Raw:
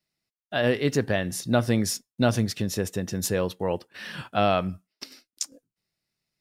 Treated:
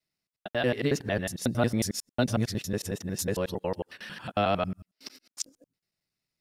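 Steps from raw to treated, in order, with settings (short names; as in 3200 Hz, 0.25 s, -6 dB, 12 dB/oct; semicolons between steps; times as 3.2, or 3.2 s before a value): local time reversal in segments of 91 ms; gain -3.5 dB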